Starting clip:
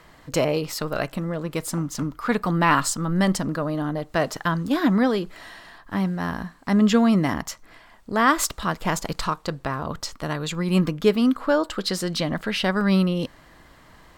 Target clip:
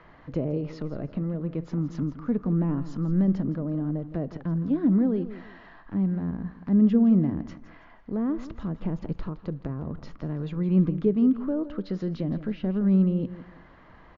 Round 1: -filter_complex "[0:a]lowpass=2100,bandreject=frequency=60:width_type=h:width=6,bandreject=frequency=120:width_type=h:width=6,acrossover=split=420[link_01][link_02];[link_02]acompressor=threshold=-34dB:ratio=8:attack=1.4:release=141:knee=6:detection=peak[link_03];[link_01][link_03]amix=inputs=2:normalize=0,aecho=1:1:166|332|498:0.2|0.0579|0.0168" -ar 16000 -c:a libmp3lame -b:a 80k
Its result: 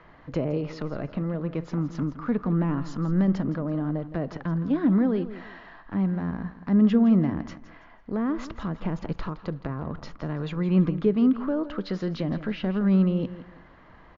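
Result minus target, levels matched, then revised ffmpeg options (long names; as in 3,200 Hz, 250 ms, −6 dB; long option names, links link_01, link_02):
downward compressor: peak gain reduction −9.5 dB
-filter_complex "[0:a]lowpass=2100,bandreject=frequency=60:width_type=h:width=6,bandreject=frequency=120:width_type=h:width=6,acrossover=split=420[link_01][link_02];[link_02]acompressor=threshold=-45dB:ratio=8:attack=1.4:release=141:knee=6:detection=peak[link_03];[link_01][link_03]amix=inputs=2:normalize=0,aecho=1:1:166|332|498:0.2|0.0579|0.0168" -ar 16000 -c:a libmp3lame -b:a 80k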